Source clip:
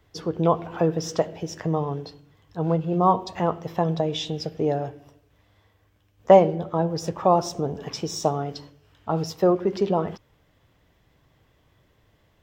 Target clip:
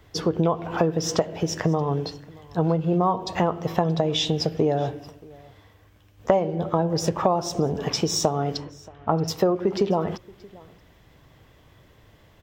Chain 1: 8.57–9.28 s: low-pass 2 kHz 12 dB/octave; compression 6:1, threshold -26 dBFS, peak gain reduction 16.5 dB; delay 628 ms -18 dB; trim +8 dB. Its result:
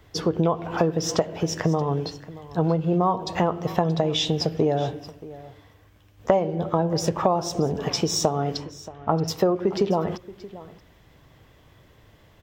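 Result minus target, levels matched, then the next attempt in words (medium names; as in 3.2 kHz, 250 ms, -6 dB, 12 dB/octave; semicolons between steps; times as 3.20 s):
echo-to-direct +6 dB
8.57–9.28 s: low-pass 2 kHz 12 dB/octave; compression 6:1, threshold -26 dBFS, peak gain reduction 16.5 dB; delay 628 ms -24 dB; trim +8 dB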